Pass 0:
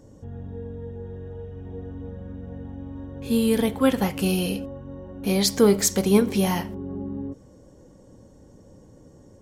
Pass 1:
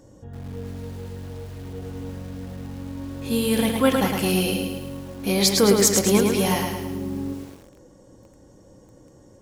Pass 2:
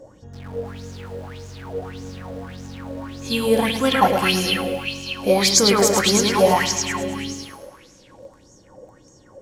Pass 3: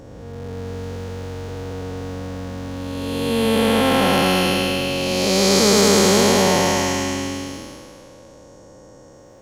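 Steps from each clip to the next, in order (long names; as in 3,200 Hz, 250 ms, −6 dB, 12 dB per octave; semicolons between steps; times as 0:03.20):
low-shelf EQ 430 Hz −5.5 dB; on a send at −18 dB: convolution reverb RT60 0.70 s, pre-delay 3 ms; on the sum: feedback echo at a low word length 108 ms, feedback 55%, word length 8 bits, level −4 dB; level +3 dB
high-shelf EQ 11,000 Hz −5 dB; echo through a band-pass that steps 208 ms, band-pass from 1,200 Hz, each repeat 0.7 octaves, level −2.5 dB; auto-filter bell 1.7 Hz 530–6,700 Hz +18 dB; level −1.5 dB
spectrum smeared in time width 601 ms; level +6 dB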